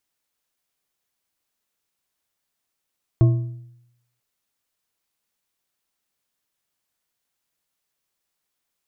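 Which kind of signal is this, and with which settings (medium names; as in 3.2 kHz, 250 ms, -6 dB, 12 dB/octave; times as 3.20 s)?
metal hit bar, length 0.99 s, lowest mode 121 Hz, modes 4, decay 0.82 s, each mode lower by 10 dB, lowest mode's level -9 dB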